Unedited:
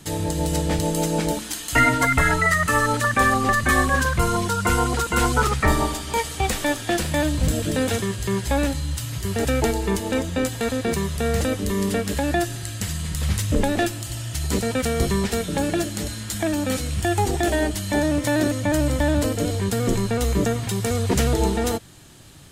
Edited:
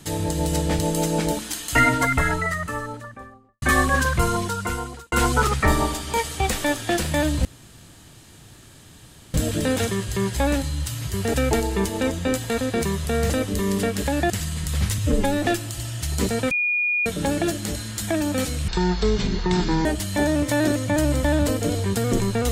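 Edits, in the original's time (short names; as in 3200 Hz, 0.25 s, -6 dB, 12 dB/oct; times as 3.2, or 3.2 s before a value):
1.72–3.62 studio fade out
4.23–5.12 fade out
7.45 insert room tone 1.89 s
12.41–12.78 cut
13.46–13.78 stretch 1.5×
14.83–15.38 bleep 2440 Hz -19 dBFS
17–17.61 speed 52%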